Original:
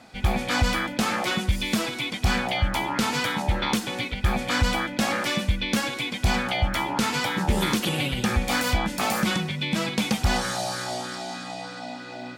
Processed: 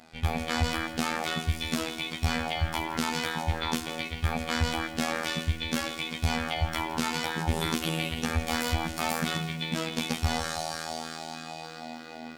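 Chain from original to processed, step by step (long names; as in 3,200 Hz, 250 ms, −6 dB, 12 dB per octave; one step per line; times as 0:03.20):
phases set to zero 80.6 Hz
feedback echo at a low word length 164 ms, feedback 55%, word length 7 bits, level −14.5 dB
level −2.5 dB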